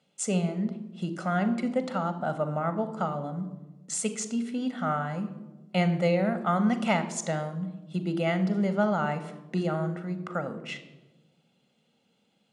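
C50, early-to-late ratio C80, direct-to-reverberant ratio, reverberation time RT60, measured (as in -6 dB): 12.0 dB, 14.5 dB, 10.0 dB, 1.1 s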